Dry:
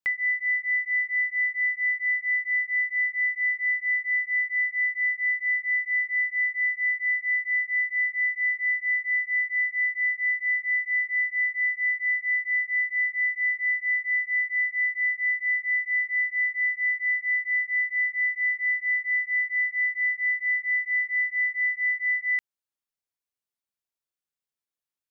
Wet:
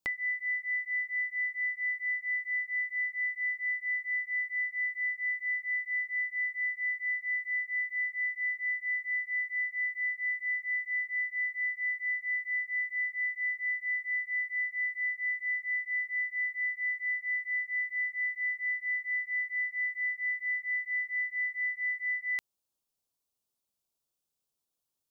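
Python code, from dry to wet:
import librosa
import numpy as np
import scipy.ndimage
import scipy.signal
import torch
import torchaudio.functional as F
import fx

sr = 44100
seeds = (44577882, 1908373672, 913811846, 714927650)

y = fx.peak_eq(x, sr, hz=1900.0, db=-14.5, octaves=0.97)
y = y * 10.0 ** (7.0 / 20.0)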